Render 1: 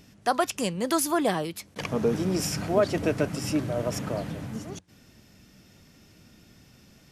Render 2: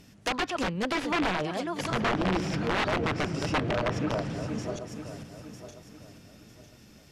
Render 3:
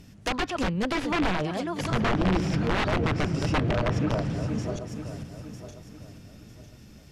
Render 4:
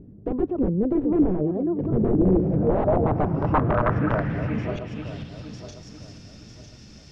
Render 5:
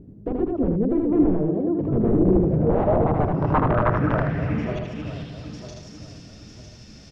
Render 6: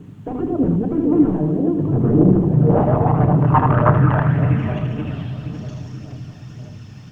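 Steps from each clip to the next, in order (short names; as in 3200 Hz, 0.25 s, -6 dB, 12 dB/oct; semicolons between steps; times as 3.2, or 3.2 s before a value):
regenerating reverse delay 0.476 s, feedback 54%, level -8.5 dB; wrapped overs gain 19.5 dB; treble ducked by the level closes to 2900 Hz, closed at -23.5 dBFS
low shelf 170 Hz +10 dB
low-pass sweep 390 Hz -> 5500 Hz, 2.17–5.84; gain +2.5 dB
echo 78 ms -4 dB
phaser 1.8 Hz, delay 1.3 ms, feedback 41%; added noise pink -58 dBFS; reverb RT60 3.2 s, pre-delay 3 ms, DRR 8.5 dB; gain -4 dB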